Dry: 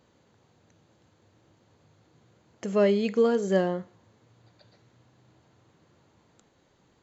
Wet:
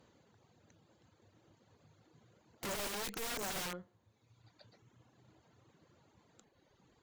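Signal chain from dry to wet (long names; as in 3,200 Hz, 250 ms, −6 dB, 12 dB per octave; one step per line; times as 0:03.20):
reverb reduction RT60 1.2 s
tube saturation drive 26 dB, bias 0.7
wrap-around overflow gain 37 dB
level +2 dB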